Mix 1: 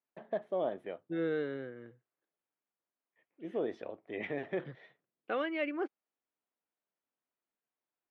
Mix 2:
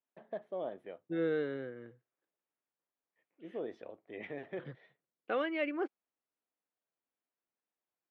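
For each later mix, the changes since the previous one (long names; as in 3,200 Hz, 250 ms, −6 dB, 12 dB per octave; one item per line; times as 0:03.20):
first voice −6.0 dB
master: add parametric band 500 Hz +2 dB 0.21 octaves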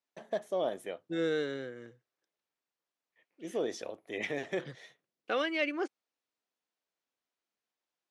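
first voice +5.5 dB
master: remove high-frequency loss of the air 480 metres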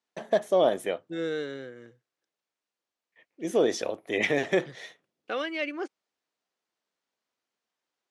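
first voice +10.0 dB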